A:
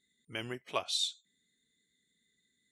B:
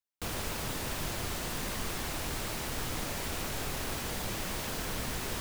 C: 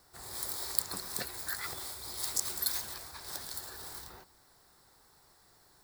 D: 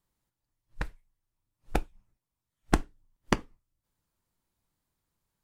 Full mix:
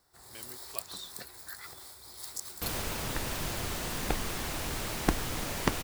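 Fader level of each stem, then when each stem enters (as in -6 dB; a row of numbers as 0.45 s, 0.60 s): -12.5 dB, +0.5 dB, -7.0 dB, -3.0 dB; 0.00 s, 2.40 s, 0.00 s, 2.35 s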